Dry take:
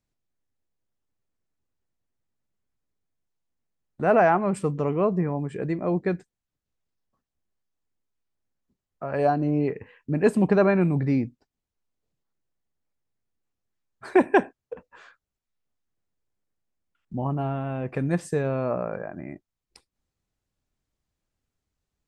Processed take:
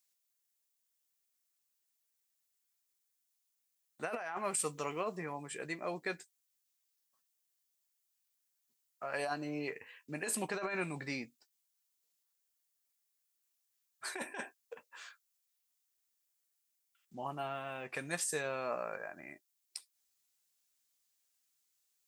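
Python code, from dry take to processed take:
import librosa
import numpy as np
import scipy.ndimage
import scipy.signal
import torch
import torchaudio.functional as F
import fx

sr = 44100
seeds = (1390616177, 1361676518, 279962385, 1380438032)

y = np.diff(x, prepend=0.0)
y = fx.doubler(y, sr, ms=13.0, db=-11)
y = fx.over_compress(y, sr, threshold_db=-44.0, ratio=-1.0)
y = fx.high_shelf(y, sr, hz=4800.0, db=5.5, at=(4.44, 5.17))
y = fx.resample_linear(y, sr, factor=2, at=(17.14, 17.94))
y = y * librosa.db_to_amplitude(8.0)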